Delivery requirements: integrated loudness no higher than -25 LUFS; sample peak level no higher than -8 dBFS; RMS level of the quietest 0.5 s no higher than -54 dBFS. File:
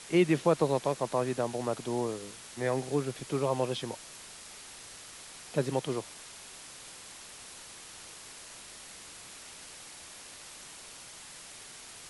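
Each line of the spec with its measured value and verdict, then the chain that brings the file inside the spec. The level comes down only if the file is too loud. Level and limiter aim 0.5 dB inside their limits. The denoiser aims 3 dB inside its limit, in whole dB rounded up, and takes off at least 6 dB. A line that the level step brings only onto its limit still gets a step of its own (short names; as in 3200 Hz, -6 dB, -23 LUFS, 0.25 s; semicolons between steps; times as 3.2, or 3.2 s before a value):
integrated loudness -31.5 LUFS: OK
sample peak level -13.0 dBFS: OK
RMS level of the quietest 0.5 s -48 dBFS: fail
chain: denoiser 9 dB, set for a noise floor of -48 dBFS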